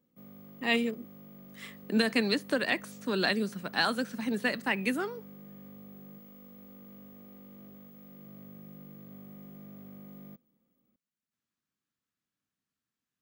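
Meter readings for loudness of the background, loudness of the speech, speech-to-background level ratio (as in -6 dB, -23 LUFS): -49.5 LUFS, -30.0 LUFS, 19.5 dB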